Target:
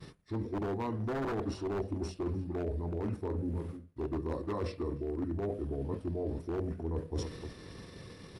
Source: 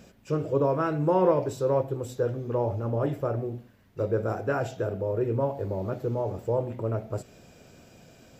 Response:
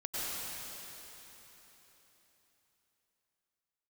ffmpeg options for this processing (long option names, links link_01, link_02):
-filter_complex "[0:a]agate=range=-33dB:threshold=-49dB:ratio=3:detection=peak,asetrate=32097,aresample=44100,atempo=1.37395,aeval=exprs='0.1*(abs(mod(val(0)/0.1+3,4)-2)-1)':channel_layout=same,asplit=2[link_01][link_02];[link_02]adelay=303.2,volume=-19dB,highshelf=frequency=4000:gain=-6.82[link_03];[link_01][link_03]amix=inputs=2:normalize=0,areverse,acompressor=threshold=-39dB:ratio=12,areverse,volume=7dB"